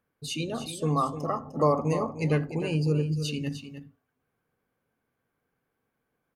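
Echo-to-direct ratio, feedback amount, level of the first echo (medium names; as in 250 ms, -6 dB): -10.5 dB, no regular repeats, -10.5 dB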